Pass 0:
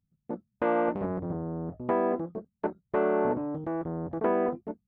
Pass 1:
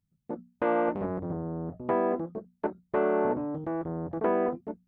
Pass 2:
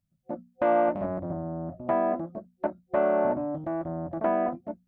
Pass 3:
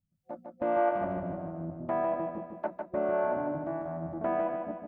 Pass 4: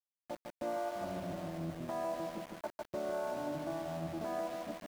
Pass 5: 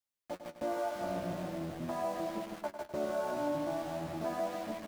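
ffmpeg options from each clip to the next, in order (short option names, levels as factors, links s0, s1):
-af "bandreject=f=60:t=h:w=6,bandreject=f=120:t=h:w=6,bandreject=f=180:t=h:w=6,bandreject=f=240:t=h:w=6"
-af "superequalizer=7b=0.282:8b=2.24"
-filter_complex "[0:a]acrossover=split=530[s0][s1];[s0]aeval=exprs='val(0)*(1-0.7/2+0.7/2*cos(2*PI*1.7*n/s))':c=same[s2];[s1]aeval=exprs='val(0)*(1-0.7/2-0.7/2*cos(2*PI*1.7*n/s))':c=same[s3];[s2][s3]amix=inputs=2:normalize=0,asplit=2[s4][s5];[s5]aecho=0:1:152|304|456|608|760|912:0.562|0.281|0.141|0.0703|0.0351|0.0176[s6];[s4][s6]amix=inputs=2:normalize=0,volume=0.794"
-af "alimiter=level_in=1.41:limit=0.0631:level=0:latency=1:release=478,volume=0.708,aeval=exprs='val(0)*gte(abs(val(0)),0.00668)':c=same,volume=0.794"
-af "flanger=delay=9.1:depth=8.2:regen=38:speed=0.42:shape=sinusoidal,aecho=1:1:101|202|303:0.316|0.0727|0.0167,volume=2"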